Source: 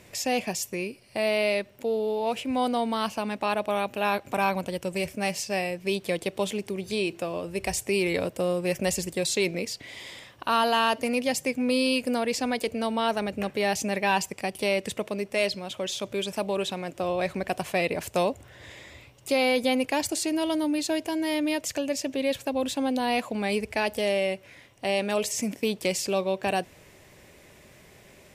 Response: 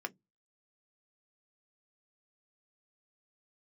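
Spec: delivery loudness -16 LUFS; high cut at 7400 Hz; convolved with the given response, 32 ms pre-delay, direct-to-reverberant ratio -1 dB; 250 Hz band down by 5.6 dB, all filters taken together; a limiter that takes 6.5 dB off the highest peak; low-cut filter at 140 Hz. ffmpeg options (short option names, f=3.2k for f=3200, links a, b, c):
-filter_complex "[0:a]highpass=140,lowpass=7.4k,equalizer=f=250:t=o:g=-6.5,alimiter=limit=-18.5dB:level=0:latency=1,asplit=2[a][b];[1:a]atrim=start_sample=2205,adelay=32[c];[b][c]afir=irnorm=-1:irlink=0,volume=-0.5dB[d];[a][d]amix=inputs=2:normalize=0,volume=12dB"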